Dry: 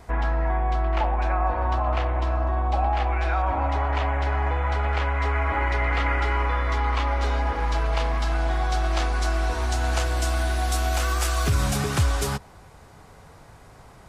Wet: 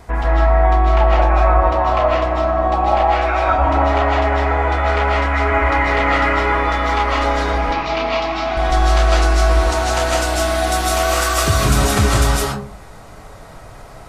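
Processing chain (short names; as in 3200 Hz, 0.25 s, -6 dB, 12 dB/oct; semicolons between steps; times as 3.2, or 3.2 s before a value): 7.57–8.57 speaker cabinet 160–5400 Hz, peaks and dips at 250 Hz +4 dB, 520 Hz -9 dB, 1600 Hz -8 dB, 2400 Hz +5 dB; digital reverb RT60 0.44 s, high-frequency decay 0.4×, pre-delay 0.115 s, DRR -4 dB; gain +5 dB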